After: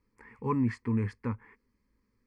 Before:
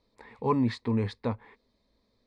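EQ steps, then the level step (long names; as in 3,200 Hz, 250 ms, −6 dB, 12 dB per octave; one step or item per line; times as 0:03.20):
phaser with its sweep stopped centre 1,600 Hz, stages 4
0.0 dB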